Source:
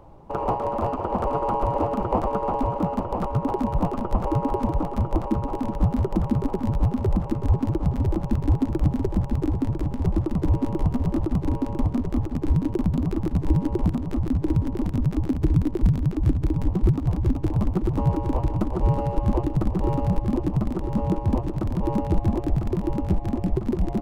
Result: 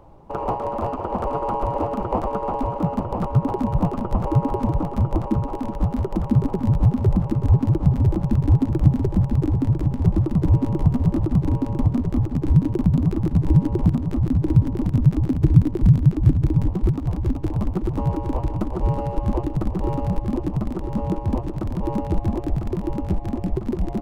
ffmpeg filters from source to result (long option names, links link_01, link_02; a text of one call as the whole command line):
ffmpeg -i in.wav -af "asetnsamples=nb_out_samples=441:pad=0,asendcmd='2.84 equalizer g 7.5;5.43 equalizer g -1.5;6.3 equalizer g 9;16.67 equalizer g -1',equalizer=frequency=130:width_type=o:width=1.1:gain=-0.5" out.wav